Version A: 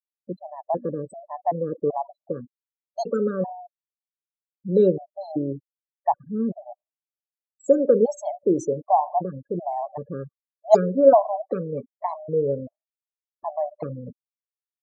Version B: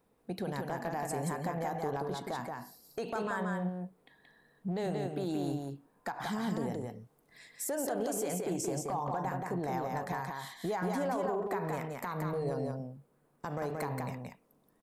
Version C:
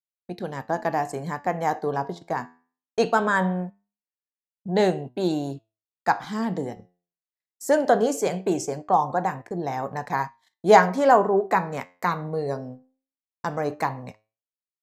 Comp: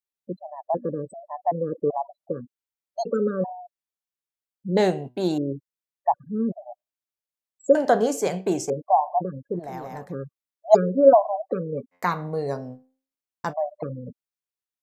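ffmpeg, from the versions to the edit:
-filter_complex "[2:a]asplit=3[s0][s1][s2];[0:a]asplit=5[s3][s4][s5][s6][s7];[s3]atrim=end=4.772[s8];[s0]atrim=start=4.768:end=5.382[s9];[s4]atrim=start=5.378:end=7.752[s10];[s1]atrim=start=7.748:end=8.702[s11];[s5]atrim=start=8.698:end=9.75[s12];[1:a]atrim=start=9.51:end=10.16[s13];[s6]atrim=start=9.92:end=11.95[s14];[s2]atrim=start=11.91:end=13.54[s15];[s7]atrim=start=13.5[s16];[s8][s9]acrossfade=d=0.004:c1=hsin:c2=hsin[s17];[s17][s10]acrossfade=d=0.004:c1=hsin:c2=hsin[s18];[s18][s11]acrossfade=d=0.004:c1=hsin:c2=hsin[s19];[s19][s12]acrossfade=d=0.004:c1=hsin:c2=hsin[s20];[s20][s13]acrossfade=d=0.24:c1=tri:c2=tri[s21];[s21][s14]acrossfade=d=0.24:c1=tri:c2=tri[s22];[s22][s15]acrossfade=d=0.04:c1=tri:c2=tri[s23];[s23][s16]acrossfade=d=0.04:c1=tri:c2=tri"

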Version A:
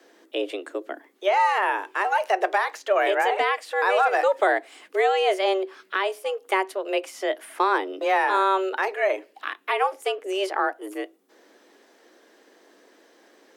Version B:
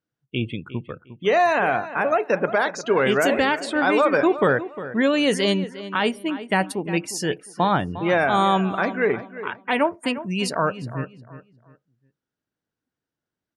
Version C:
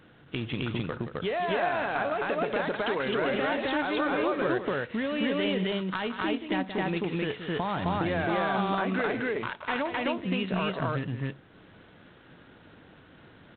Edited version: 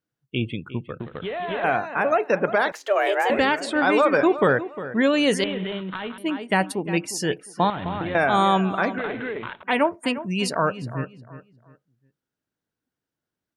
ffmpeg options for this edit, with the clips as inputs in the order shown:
-filter_complex "[2:a]asplit=4[s0][s1][s2][s3];[1:a]asplit=6[s4][s5][s6][s7][s8][s9];[s4]atrim=end=1.002[s10];[s0]atrim=start=0.998:end=1.642[s11];[s5]atrim=start=1.638:end=2.722[s12];[0:a]atrim=start=2.718:end=3.302[s13];[s6]atrim=start=3.298:end=5.442[s14];[s1]atrim=start=5.438:end=6.182[s15];[s7]atrim=start=6.178:end=7.702[s16];[s2]atrim=start=7.698:end=8.152[s17];[s8]atrim=start=8.148:end=8.982[s18];[s3]atrim=start=8.978:end=9.632[s19];[s9]atrim=start=9.628[s20];[s10][s11]acrossfade=d=0.004:c1=hsin:c2=hsin[s21];[s21][s12]acrossfade=d=0.004:c1=hsin:c2=hsin[s22];[s22][s13]acrossfade=d=0.004:c1=hsin:c2=hsin[s23];[s23][s14]acrossfade=d=0.004:c1=hsin:c2=hsin[s24];[s24][s15]acrossfade=d=0.004:c1=hsin:c2=hsin[s25];[s25][s16]acrossfade=d=0.004:c1=hsin:c2=hsin[s26];[s26][s17]acrossfade=d=0.004:c1=hsin:c2=hsin[s27];[s27][s18]acrossfade=d=0.004:c1=hsin:c2=hsin[s28];[s28][s19]acrossfade=d=0.004:c1=hsin:c2=hsin[s29];[s29][s20]acrossfade=d=0.004:c1=hsin:c2=hsin"

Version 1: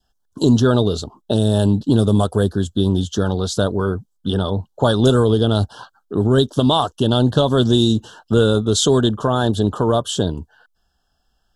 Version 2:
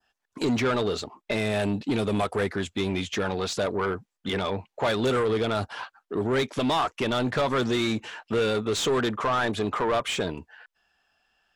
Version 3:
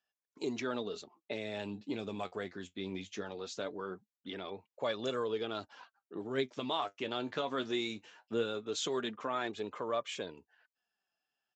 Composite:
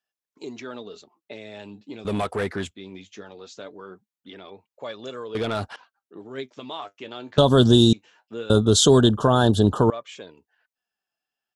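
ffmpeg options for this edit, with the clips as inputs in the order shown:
-filter_complex "[1:a]asplit=2[s0][s1];[0:a]asplit=2[s2][s3];[2:a]asplit=5[s4][s5][s6][s7][s8];[s4]atrim=end=2.052[s9];[s0]atrim=start=2.048:end=2.712[s10];[s5]atrim=start=2.708:end=5.352[s11];[s1]atrim=start=5.348:end=5.762[s12];[s6]atrim=start=5.758:end=7.382[s13];[s2]atrim=start=7.378:end=7.932[s14];[s7]atrim=start=7.928:end=8.502[s15];[s3]atrim=start=8.498:end=9.902[s16];[s8]atrim=start=9.898[s17];[s9][s10]acrossfade=d=0.004:c1=hsin:c2=hsin[s18];[s18][s11]acrossfade=d=0.004:c1=hsin:c2=hsin[s19];[s19][s12]acrossfade=d=0.004:c1=hsin:c2=hsin[s20];[s20][s13]acrossfade=d=0.004:c1=hsin:c2=hsin[s21];[s21][s14]acrossfade=d=0.004:c1=hsin:c2=hsin[s22];[s22][s15]acrossfade=d=0.004:c1=hsin:c2=hsin[s23];[s23][s16]acrossfade=d=0.004:c1=hsin:c2=hsin[s24];[s24][s17]acrossfade=d=0.004:c1=hsin:c2=hsin"

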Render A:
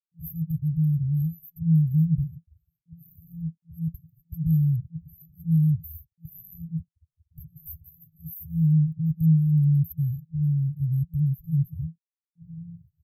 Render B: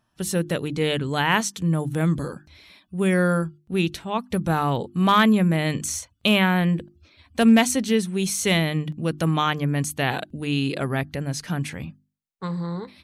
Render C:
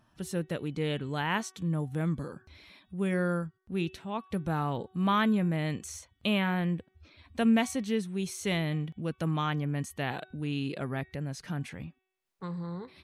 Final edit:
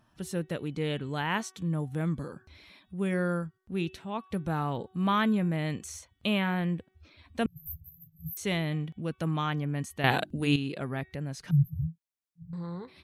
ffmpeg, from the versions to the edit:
-filter_complex "[0:a]asplit=2[s0][s1];[2:a]asplit=4[s2][s3][s4][s5];[s2]atrim=end=7.462[s6];[s0]atrim=start=7.458:end=8.372[s7];[s3]atrim=start=8.368:end=10.042[s8];[1:a]atrim=start=10.038:end=10.562[s9];[s4]atrim=start=10.558:end=11.512[s10];[s1]atrim=start=11.508:end=12.532[s11];[s5]atrim=start=12.528[s12];[s6][s7]acrossfade=d=0.004:c1=hsin:c2=hsin[s13];[s13][s8]acrossfade=d=0.004:c1=hsin:c2=hsin[s14];[s14][s9]acrossfade=d=0.004:c1=hsin:c2=hsin[s15];[s15][s10]acrossfade=d=0.004:c1=hsin:c2=hsin[s16];[s16][s11]acrossfade=d=0.004:c1=hsin:c2=hsin[s17];[s17][s12]acrossfade=d=0.004:c1=hsin:c2=hsin"

